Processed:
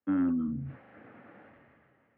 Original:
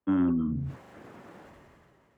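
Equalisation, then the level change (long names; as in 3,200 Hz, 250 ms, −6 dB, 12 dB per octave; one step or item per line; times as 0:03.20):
loudspeaker in its box 130–2,400 Hz, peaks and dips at 170 Hz −8 dB, 380 Hz −10 dB, 650 Hz −4 dB, 1,000 Hz −10 dB
0.0 dB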